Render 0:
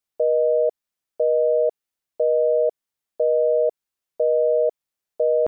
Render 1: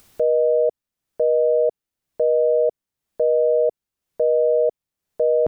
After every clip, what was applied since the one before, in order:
low-shelf EQ 330 Hz +11.5 dB
upward compression, threshold −28 dBFS
level −2 dB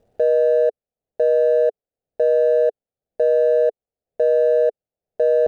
running median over 41 samples
flat-topped bell 580 Hz +11.5 dB 1.1 octaves
brickwall limiter −6.5 dBFS, peak gain reduction 5 dB
level −3.5 dB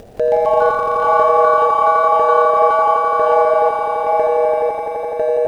upward compression, threshold −23 dBFS
delay with pitch and tempo change per echo 174 ms, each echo +5 semitones, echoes 3
echo that builds up and dies away 85 ms, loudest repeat 5, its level −4.5 dB
level +1 dB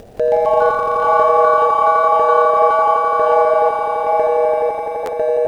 buffer that repeats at 0:05.05, samples 512, times 2

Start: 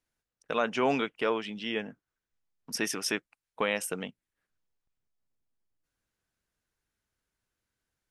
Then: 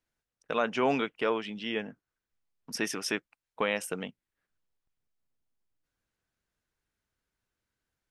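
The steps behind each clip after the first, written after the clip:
high-shelf EQ 6,800 Hz −6 dB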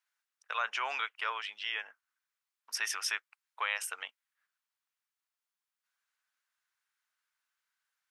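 in parallel at +2 dB: brickwall limiter −22 dBFS, peak gain reduction 8.5 dB
on the sum: four-pole ladder high-pass 890 Hz, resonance 25%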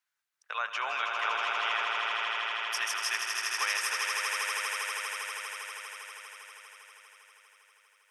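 echo that builds up and dies away 80 ms, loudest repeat 8, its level −5.5 dB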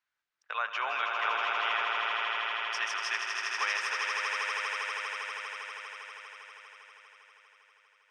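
high-frequency loss of the air 130 metres
level +1.5 dB

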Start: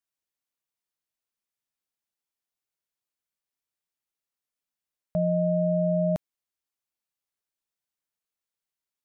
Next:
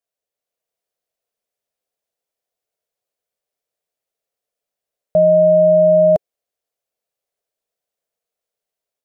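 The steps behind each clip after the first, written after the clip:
flat-topped bell 550 Hz +12.5 dB 1 octave
automatic gain control gain up to 3.5 dB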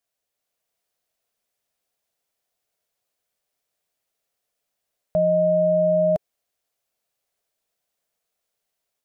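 parametric band 490 Hz −6.5 dB 0.83 octaves
brickwall limiter −19 dBFS, peak gain reduction 10 dB
level +5.5 dB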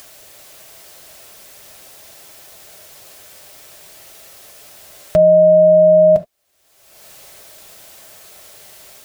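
reverb whose tail is shaped and stops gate 90 ms flat, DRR 10 dB
upward compression, threshold −24 dBFS
notch comb filter 240 Hz
level +8.5 dB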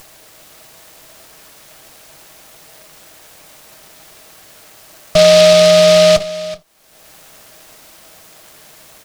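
lower of the sound and its delayed copy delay 6.3 ms
single-tap delay 377 ms −17 dB
short delay modulated by noise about 3,500 Hz, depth 0.085 ms
level +2.5 dB

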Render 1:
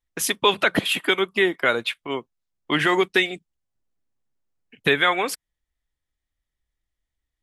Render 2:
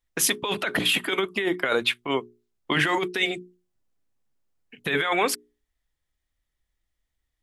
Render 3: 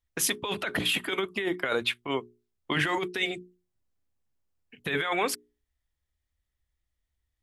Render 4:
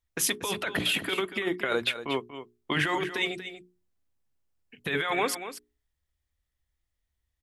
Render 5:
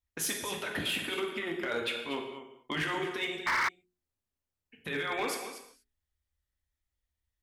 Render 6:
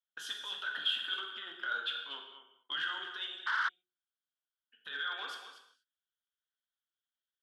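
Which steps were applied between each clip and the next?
mains-hum notches 60/120/180/240/300/360/420 Hz; compressor whose output falls as the input rises −23 dBFS, ratio −1
parametric band 76 Hz +10 dB 0.93 octaves; level −4.5 dB
single-tap delay 237 ms −11.5 dB
reverb whose tail is shaped and stops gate 270 ms falling, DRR 1.5 dB; sound drawn into the spectrogram noise, 0:03.46–0:03.69, 860–2,300 Hz −18 dBFS; hard clipping −18.5 dBFS, distortion −12 dB; level −7 dB
pair of resonant band-passes 2,200 Hz, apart 1.1 octaves; level +4.5 dB

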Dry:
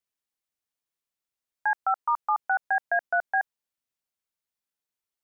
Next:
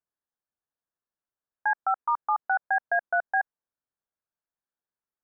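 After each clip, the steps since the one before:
elliptic low-pass filter 1,700 Hz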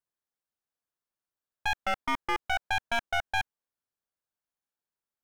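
wavefolder on the positive side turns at −26 dBFS
level −1 dB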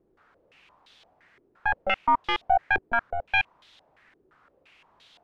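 background noise white −58 dBFS
low-pass on a step sequencer 5.8 Hz 380–3,600 Hz
level +1 dB

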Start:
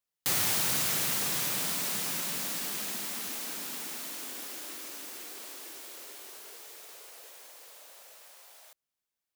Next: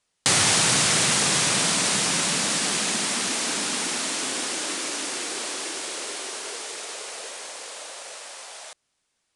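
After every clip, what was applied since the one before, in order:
Butterworth low-pass 10,000 Hz 72 dB per octave
in parallel at +2.5 dB: downward compressor, threshold −41 dBFS, peak gain reduction 12.5 dB
on the sum: level +9 dB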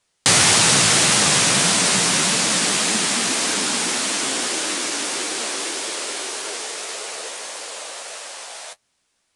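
flanger 1.7 Hz, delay 8.5 ms, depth 9.9 ms, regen +39%
level +9 dB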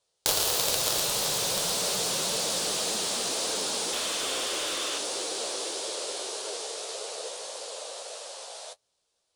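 sound drawn into the spectrogram noise, 0:03.92–0:04.99, 1,000–3,700 Hz −25 dBFS
harmonic generator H 3 −7 dB, 7 −33 dB, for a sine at −2 dBFS
octave-band graphic EQ 250/500/2,000/4,000 Hz −8/+10/−8/+5 dB
level −2 dB

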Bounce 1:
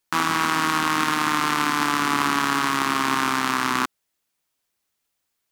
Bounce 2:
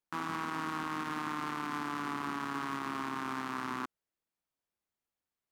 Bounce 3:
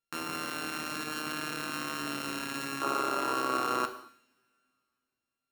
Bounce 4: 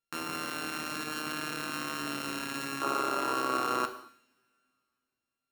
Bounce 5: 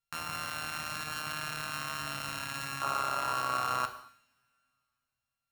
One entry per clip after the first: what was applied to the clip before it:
high-shelf EQ 2,000 Hz −11 dB; brickwall limiter −16 dBFS, peak gain reduction 7 dB; level −8.5 dB
samples sorted by size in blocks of 32 samples; coupled-rooms reverb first 0.77 s, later 3.1 s, from −26 dB, DRR 6.5 dB; gain on a spectral selection 0:02.82–0:04.08, 280–1,500 Hz +10 dB
no processing that can be heard
drawn EQ curve 120 Hz 0 dB, 360 Hz −24 dB, 660 Hz −7 dB; level +6.5 dB

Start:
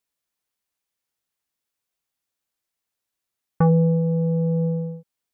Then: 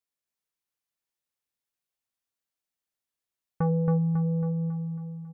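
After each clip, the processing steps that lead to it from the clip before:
repeating echo 274 ms, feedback 52%, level −4 dB
level −8.5 dB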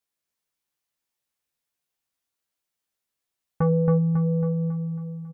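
double-tracking delay 14 ms −5 dB
level +3.5 dB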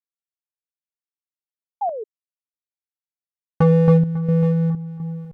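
slack as between gear wheels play −32 dBFS
sound drawn into the spectrogram fall, 0:01.81–0:02.04, 410–860 Hz −28 dBFS
square-wave tremolo 1.4 Hz, depth 60%, duty 65%
level +7 dB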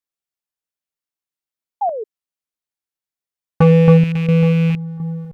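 loose part that buzzes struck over −22 dBFS, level −25 dBFS
level +4 dB

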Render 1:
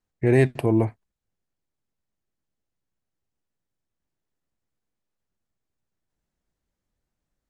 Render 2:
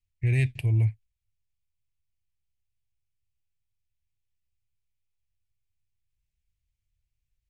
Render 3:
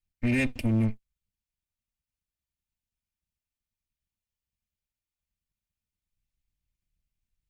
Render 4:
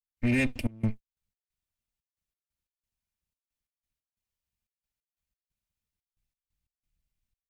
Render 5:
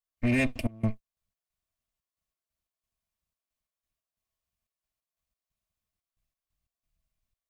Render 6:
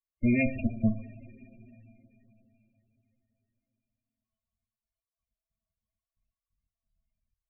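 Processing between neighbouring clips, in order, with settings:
drawn EQ curve 110 Hz 0 dB, 200 Hz −22 dB, 1,300 Hz −28 dB, 2,400 Hz −3 dB, 4,000 Hz −9 dB; level +4.5 dB
lower of the sound and its delayed copy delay 3.3 ms; leveller curve on the samples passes 1
gate pattern ".xxx.x.x" 90 BPM −24 dB
hollow resonant body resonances 660/1,100 Hz, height 11 dB, ringing for 45 ms
coupled-rooms reverb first 0.46 s, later 4 s, from −18 dB, DRR 5 dB; spectral peaks only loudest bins 16

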